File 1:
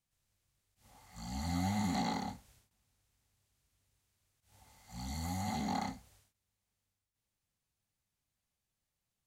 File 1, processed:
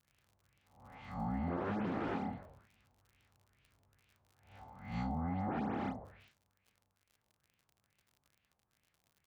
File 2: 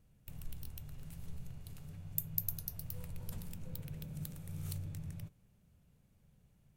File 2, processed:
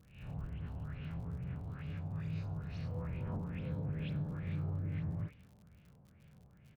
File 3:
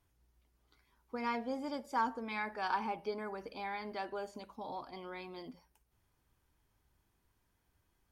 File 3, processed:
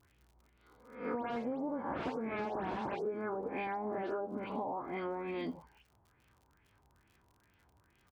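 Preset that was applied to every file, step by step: reverse spectral sustain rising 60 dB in 0.60 s; frequency-shifting echo 84 ms, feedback 45%, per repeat -95 Hz, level -19.5 dB; LFO low-pass sine 2.3 Hz 840–2700 Hz; integer overflow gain 26.5 dB; low-pass that closes with the level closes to 1.2 kHz, closed at -35 dBFS; dynamic bell 320 Hz, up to +5 dB, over -53 dBFS, Q 1; high-pass 63 Hz; band-stop 1.9 kHz, Q 30; phase dispersion highs, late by 116 ms, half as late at 3 kHz; crackle 55 per s -60 dBFS; compression 12:1, threshold -39 dBFS; peaking EQ 900 Hz -2.5 dB; trim +6 dB

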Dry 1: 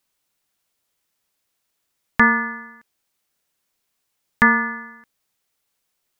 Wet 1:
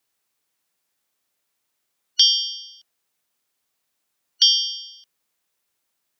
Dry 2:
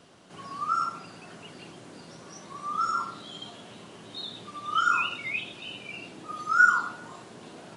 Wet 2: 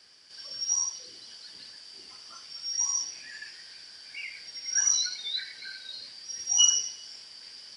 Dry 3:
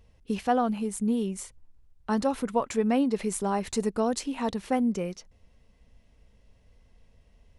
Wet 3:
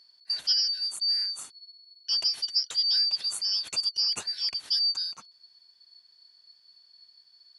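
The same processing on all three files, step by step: four frequency bands reordered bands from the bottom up 4321; high-pass 120 Hz 6 dB/octave; trim -1 dB

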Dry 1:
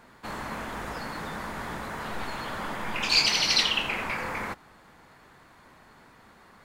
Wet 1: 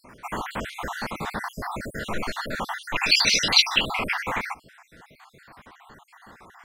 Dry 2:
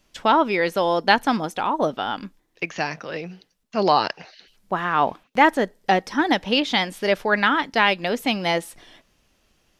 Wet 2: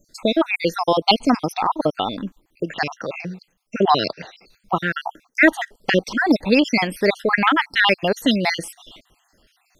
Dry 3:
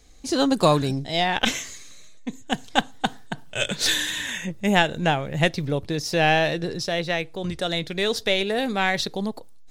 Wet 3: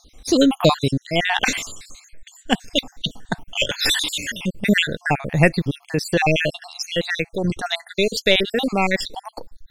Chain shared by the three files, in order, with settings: random holes in the spectrogram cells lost 58%; dynamic bell 970 Hz, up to -4 dB, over -33 dBFS, Q 0.95; trim +7.5 dB

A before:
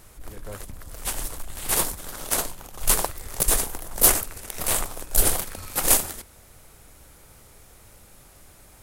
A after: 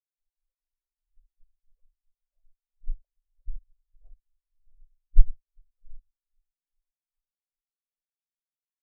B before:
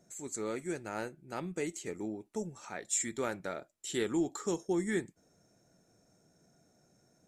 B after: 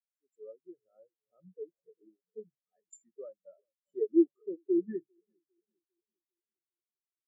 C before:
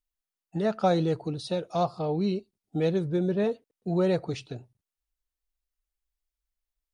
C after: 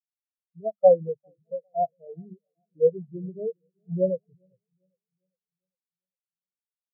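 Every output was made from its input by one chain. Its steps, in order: hum notches 50/100/150/200 Hz; low-pass that closes with the level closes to 1.4 kHz, closed at -20 dBFS; comb 1.7 ms, depth 32%; on a send: filtered feedback delay 401 ms, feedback 77%, low-pass 3.8 kHz, level -11 dB; on the sum: spectral contrast expander 4:1; trim +6 dB

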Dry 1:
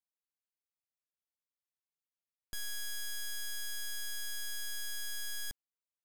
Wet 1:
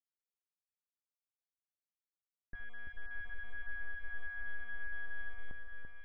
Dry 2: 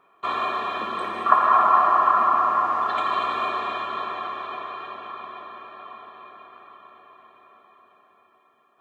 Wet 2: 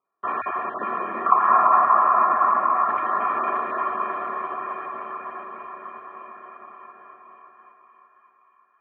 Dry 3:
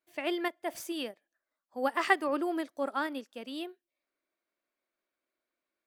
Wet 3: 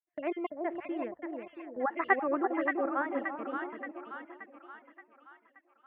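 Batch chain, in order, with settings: random holes in the spectrogram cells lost 23%; steep low-pass 2.2 kHz 36 dB/octave; gate -51 dBFS, range -22 dB; hum notches 50/100 Hz; on a send: two-band feedback delay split 940 Hz, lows 338 ms, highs 576 ms, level -4 dB

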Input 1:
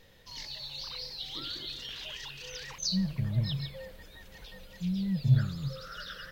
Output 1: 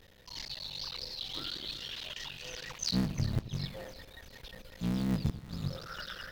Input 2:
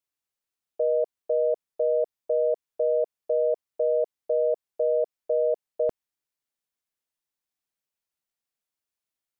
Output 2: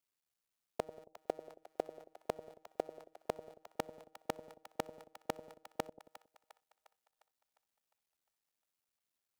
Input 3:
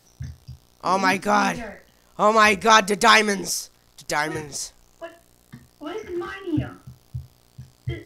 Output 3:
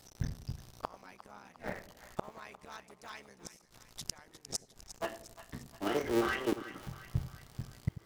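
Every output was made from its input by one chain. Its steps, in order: cycle switcher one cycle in 3, muted; inverted gate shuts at -20 dBFS, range -34 dB; two-band feedback delay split 710 Hz, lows 91 ms, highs 354 ms, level -13.5 dB; trim +1 dB

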